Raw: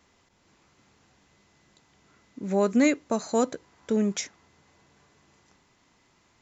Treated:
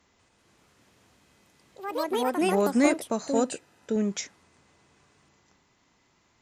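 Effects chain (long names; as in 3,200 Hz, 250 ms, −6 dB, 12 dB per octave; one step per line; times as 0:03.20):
delay with pitch and tempo change per echo 192 ms, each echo +4 semitones, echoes 3
harmonic generator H 3 −23 dB, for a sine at −8 dBFS
0:03.34–0:03.96: notch comb filter 1,100 Hz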